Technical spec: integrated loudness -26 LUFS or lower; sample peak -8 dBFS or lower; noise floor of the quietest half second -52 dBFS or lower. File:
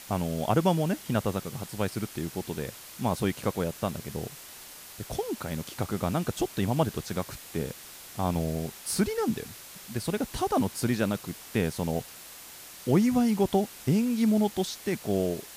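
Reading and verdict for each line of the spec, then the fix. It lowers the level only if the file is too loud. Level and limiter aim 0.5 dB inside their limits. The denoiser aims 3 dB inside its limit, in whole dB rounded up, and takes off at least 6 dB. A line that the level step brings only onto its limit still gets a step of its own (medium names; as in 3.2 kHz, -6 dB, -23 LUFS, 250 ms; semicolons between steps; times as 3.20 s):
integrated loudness -29.5 LUFS: pass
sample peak -10.0 dBFS: pass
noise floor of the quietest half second -46 dBFS: fail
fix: noise reduction 9 dB, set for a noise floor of -46 dBFS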